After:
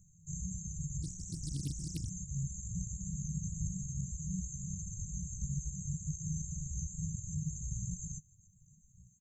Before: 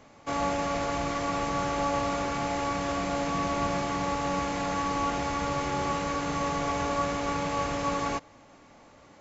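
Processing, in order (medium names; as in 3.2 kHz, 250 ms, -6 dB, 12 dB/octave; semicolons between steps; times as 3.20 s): feedback delay 147 ms, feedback 60%, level -15.5 dB; chorus voices 4, 0.43 Hz, delay 16 ms, depth 4.4 ms; brick-wall FIR band-stop 190–6200 Hz; bass shelf 130 Hz -4 dB; reverb removal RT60 0.71 s; 1.02–2.10 s: loudspeaker Doppler distortion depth 0.81 ms; trim +7 dB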